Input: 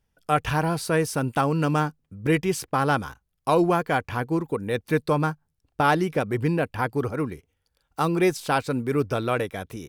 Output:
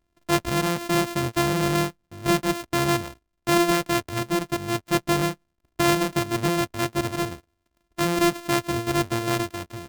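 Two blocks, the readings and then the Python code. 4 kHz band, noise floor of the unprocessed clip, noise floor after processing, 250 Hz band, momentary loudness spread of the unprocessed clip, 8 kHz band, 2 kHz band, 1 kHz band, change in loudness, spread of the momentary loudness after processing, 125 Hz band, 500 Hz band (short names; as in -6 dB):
+8.0 dB, -76 dBFS, -76 dBFS, +1.5 dB, 8 LU, +7.0 dB, +0.5 dB, -1.5 dB, +0.5 dB, 9 LU, -1.5 dB, -1.0 dB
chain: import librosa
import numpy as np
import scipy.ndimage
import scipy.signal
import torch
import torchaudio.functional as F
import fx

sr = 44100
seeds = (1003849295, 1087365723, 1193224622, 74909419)

y = np.r_[np.sort(x[:len(x) // 128 * 128].reshape(-1, 128), axis=1).ravel(), x[len(x) // 128 * 128:]]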